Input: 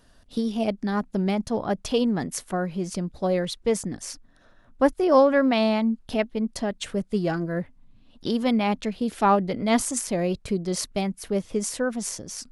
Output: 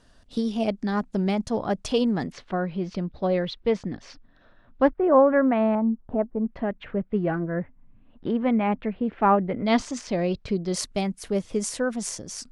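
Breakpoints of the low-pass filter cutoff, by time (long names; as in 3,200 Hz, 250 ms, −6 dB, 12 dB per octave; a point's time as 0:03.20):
low-pass filter 24 dB per octave
9,400 Hz
from 0:02.32 4,100 Hz
from 0:04.88 1,900 Hz
from 0:05.75 1,200 Hz
from 0:06.46 2,300 Hz
from 0:09.66 5,400 Hz
from 0:10.74 10,000 Hz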